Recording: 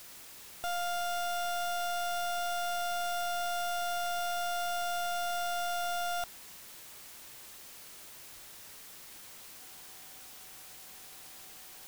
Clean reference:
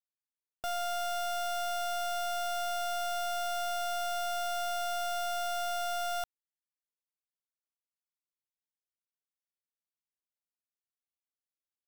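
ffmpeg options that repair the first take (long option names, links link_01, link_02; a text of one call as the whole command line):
ffmpeg -i in.wav -filter_complex "[0:a]bandreject=frequency=760:width=30,asplit=3[link_01][link_02][link_03];[link_01]afade=type=out:start_time=8.34:duration=0.02[link_04];[link_02]highpass=frequency=140:width=0.5412,highpass=frequency=140:width=1.3066,afade=type=in:start_time=8.34:duration=0.02,afade=type=out:start_time=8.46:duration=0.02[link_05];[link_03]afade=type=in:start_time=8.46:duration=0.02[link_06];[link_04][link_05][link_06]amix=inputs=3:normalize=0,afwtdn=0.0032" out.wav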